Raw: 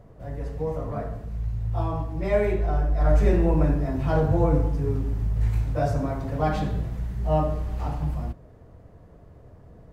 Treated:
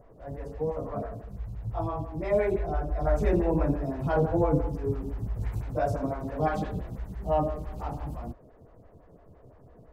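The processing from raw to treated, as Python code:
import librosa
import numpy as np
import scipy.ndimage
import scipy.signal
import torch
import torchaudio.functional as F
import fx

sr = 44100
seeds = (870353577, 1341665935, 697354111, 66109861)

y = fx.stagger_phaser(x, sr, hz=5.9)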